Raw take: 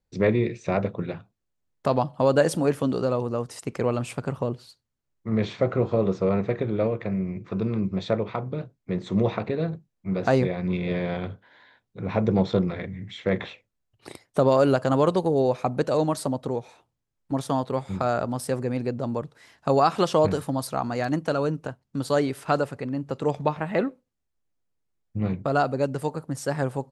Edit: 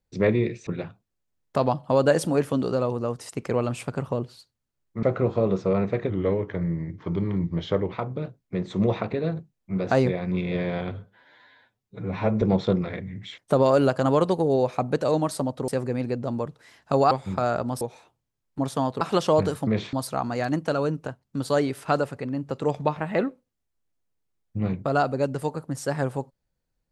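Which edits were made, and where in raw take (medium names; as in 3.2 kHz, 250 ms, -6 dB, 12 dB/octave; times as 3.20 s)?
0.67–0.97 s: delete
5.33–5.59 s: move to 20.53 s
6.66–8.28 s: speed 89%
11.28–12.28 s: stretch 1.5×
13.24–14.24 s: delete
16.54–17.74 s: swap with 18.44–19.87 s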